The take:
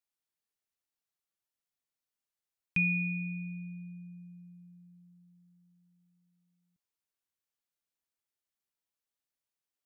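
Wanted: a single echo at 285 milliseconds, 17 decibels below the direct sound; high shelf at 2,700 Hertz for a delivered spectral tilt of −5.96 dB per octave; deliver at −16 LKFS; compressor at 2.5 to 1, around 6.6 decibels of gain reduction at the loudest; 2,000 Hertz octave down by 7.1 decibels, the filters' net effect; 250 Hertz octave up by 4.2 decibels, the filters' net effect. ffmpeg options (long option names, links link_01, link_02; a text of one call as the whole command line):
ffmpeg -i in.wav -af "equalizer=frequency=250:width_type=o:gain=8.5,equalizer=frequency=2000:width_type=o:gain=-6,highshelf=frequency=2700:gain=-6,acompressor=threshold=-35dB:ratio=2.5,aecho=1:1:285:0.141,volume=22.5dB" out.wav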